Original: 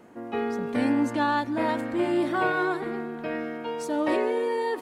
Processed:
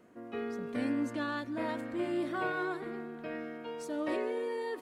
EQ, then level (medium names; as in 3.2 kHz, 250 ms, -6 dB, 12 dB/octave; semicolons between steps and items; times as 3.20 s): band-stop 850 Hz, Q 5.3; -8.5 dB